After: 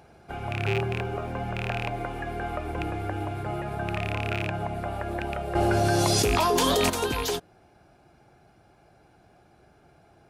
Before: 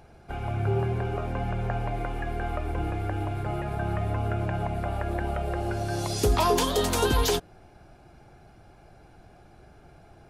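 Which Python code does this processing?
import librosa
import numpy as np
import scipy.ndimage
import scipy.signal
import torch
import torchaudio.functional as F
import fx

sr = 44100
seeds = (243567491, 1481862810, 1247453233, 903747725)

p1 = fx.rattle_buzz(x, sr, strikes_db=-24.0, level_db=-18.0)
p2 = fx.highpass(p1, sr, hz=120.0, slope=6)
p3 = fx.rider(p2, sr, range_db=5, speed_s=2.0)
p4 = p2 + (p3 * 10.0 ** (1.0 / 20.0))
p5 = fx.quant_float(p4, sr, bits=6, at=(0.86, 1.98))
p6 = fx.env_flatten(p5, sr, amount_pct=100, at=(5.55, 6.9))
y = p6 * 10.0 ** (-7.5 / 20.0)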